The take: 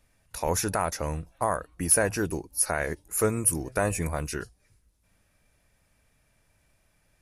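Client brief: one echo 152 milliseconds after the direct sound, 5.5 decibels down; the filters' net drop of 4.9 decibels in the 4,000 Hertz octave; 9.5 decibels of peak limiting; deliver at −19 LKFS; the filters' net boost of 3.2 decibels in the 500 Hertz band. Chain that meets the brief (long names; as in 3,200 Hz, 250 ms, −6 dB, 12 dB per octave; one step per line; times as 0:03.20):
parametric band 500 Hz +4 dB
parametric band 4,000 Hz −7.5 dB
brickwall limiter −18.5 dBFS
single-tap delay 152 ms −5.5 dB
level +10.5 dB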